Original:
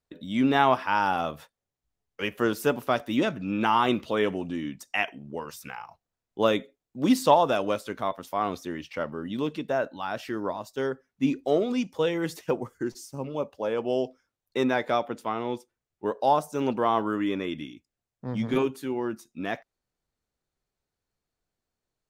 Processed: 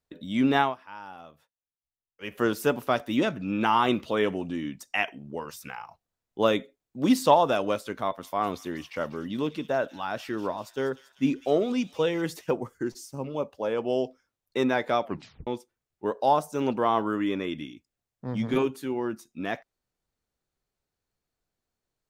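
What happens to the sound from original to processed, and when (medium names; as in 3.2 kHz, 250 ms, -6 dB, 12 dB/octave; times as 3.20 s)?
0.58–2.36 s: dip -18 dB, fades 0.16 s
8.02–12.22 s: feedback echo behind a high-pass 195 ms, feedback 66%, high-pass 3.2 kHz, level -10 dB
15.04 s: tape stop 0.43 s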